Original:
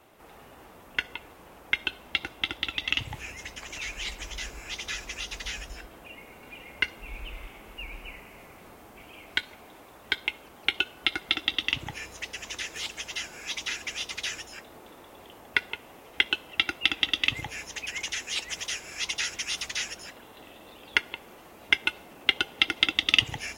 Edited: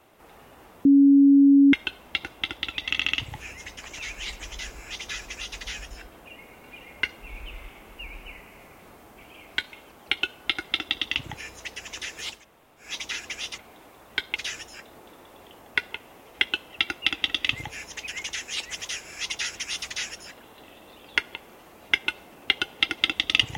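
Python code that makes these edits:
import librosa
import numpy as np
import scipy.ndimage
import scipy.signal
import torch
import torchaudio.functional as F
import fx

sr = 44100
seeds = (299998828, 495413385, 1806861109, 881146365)

y = fx.edit(x, sr, fx.bleep(start_s=0.85, length_s=0.88, hz=279.0, db=-11.5),
    fx.stutter(start_s=2.87, slice_s=0.07, count=4),
    fx.move(start_s=9.52, length_s=0.78, to_s=14.15),
    fx.room_tone_fill(start_s=12.94, length_s=0.47, crossfade_s=0.16), tone=tone)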